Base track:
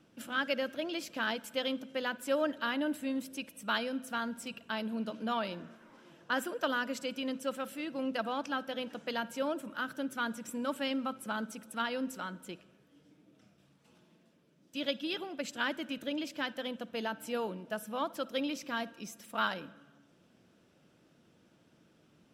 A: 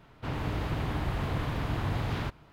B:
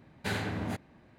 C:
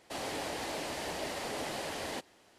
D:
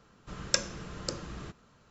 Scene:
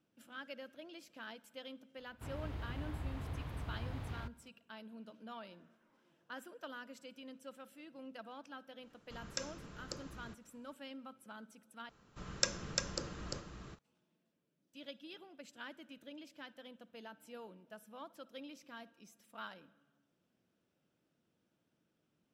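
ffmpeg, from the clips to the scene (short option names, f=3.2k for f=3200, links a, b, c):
-filter_complex "[4:a]asplit=2[a][b];[0:a]volume=-15.5dB[c];[1:a]equalizer=f=70:w=2.4:g=11.5[d];[a]alimiter=limit=-8dB:level=0:latency=1:release=52[e];[b]aecho=1:1:347:0.668[f];[c]asplit=2[g][h];[g]atrim=end=11.894[i];[f]atrim=end=1.9,asetpts=PTS-STARTPTS,volume=-5.5dB[j];[h]atrim=start=13.786[k];[d]atrim=end=2.52,asetpts=PTS-STARTPTS,volume=-15dB,afade=t=in:d=0.004:c=hsin,afade=t=out:st=2.516:d=0.004:c=hsin,adelay=1980[l];[e]atrim=end=1.9,asetpts=PTS-STARTPTS,volume=-10dB,afade=t=in:d=0.004:c=hsin,afade=t=out:st=1.896:d=0.004:c=hsin,adelay=8830[m];[i][j]acrossfade=d=0.004:c1=hsin:c2=hsin[n];[n][k]acrossfade=d=0.004:c1=hsin:c2=hsin[o];[o][l][m]amix=inputs=3:normalize=0"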